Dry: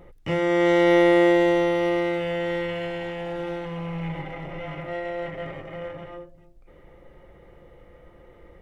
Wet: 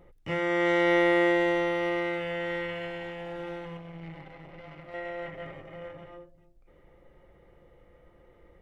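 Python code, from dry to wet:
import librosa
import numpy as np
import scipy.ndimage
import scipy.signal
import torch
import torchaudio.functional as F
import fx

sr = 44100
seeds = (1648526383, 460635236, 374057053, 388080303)

y = fx.tube_stage(x, sr, drive_db=26.0, bias=0.8, at=(3.77, 4.94))
y = fx.dynamic_eq(y, sr, hz=1700.0, q=0.75, threshold_db=-38.0, ratio=4.0, max_db=7)
y = y * 10.0 ** (-7.5 / 20.0)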